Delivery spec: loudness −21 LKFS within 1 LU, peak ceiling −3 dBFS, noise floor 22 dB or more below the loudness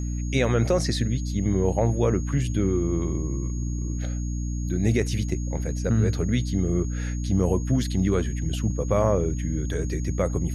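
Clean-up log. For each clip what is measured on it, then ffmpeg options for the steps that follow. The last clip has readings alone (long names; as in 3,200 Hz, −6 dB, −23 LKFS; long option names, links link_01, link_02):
mains hum 60 Hz; hum harmonics up to 300 Hz; level of the hum −25 dBFS; interfering tone 6,600 Hz; level of the tone −43 dBFS; integrated loudness −25.5 LKFS; sample peak −7.5 dBFS; target loudness −21.0 LKFS
→ -af "bandreject=frequency=60:width_type=h:width=4,bandreject=frequency=120:width_type=h:width=4,bandreject=frequency=180:width_type=h:width=4,bandreject=frequency=240:width_type=h:width=4,bandreject=frequency=300:width_type=h:width=4"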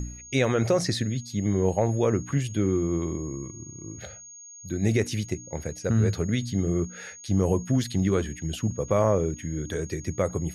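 mains hum none found; interfering tone 6,600 Hz; level of the tone −43 dBFS
→ -af "bandreject=frequency=6600:width=30"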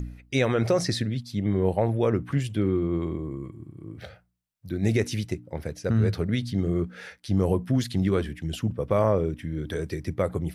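interfering tone none found; integrated loudness −26.5 LKFS; sample peak −9.5 dBFS; target loudness −21.0 LKFS
→ -af "volume=5.5dB"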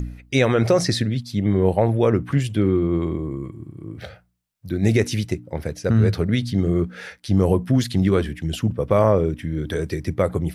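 integrated loudness −21.0 LKFS; sample peak −4.0 dBFS; background noise floor −55 dBFS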